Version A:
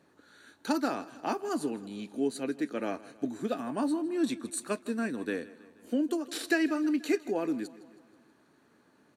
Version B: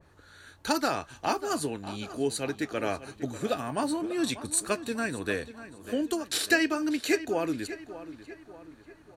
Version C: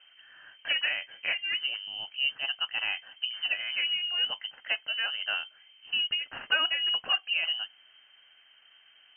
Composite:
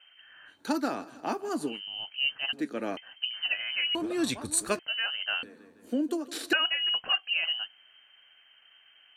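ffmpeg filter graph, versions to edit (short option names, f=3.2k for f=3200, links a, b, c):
-filter_complex "[0:a]asplit=3[a][b][c];[2:a]asplit=5[d][e][f][g][h];[d]atrim=end=0.61[i];[a]atrim=start=0.45:end=1.82[j];[e]atrim=start=1.66:end=2.532[k];[b]atrim=start=2.528:end=2.972[l];[f]atrim=start=2.968:end=3.952[m];[1:a]atrim=start=3.948:end=4.792[n];[g]atrim=start=4.788:end=5.432[o];[c]atrim=start=5.428:end=6.532[p];[h]atrim=start=6.528[q];[i][j]acrossfade=d=0.16:c1=tri:c2=tri[r];[r][k]acrossfade=d=0.16:c1=tri:c2=tri[s];[s][l]acrossfade=d=0.004:c1=hsin:c2=hsin[t];[t][m]acrossfade=d=0.004:c1=hsin:c2=hsin[u];[u][n]acrossfade=d=0.004:c1=hsin:c2=hsin[v];[v][o]acrossfade=d=0.004:c1=hsin:c2=hsin[w];[w][p]acrossfade=d=0.004:c1=hsin:c2=hsin[x];[x][q]acrossfade=d=0.004:c1=hsin:c2=hsin"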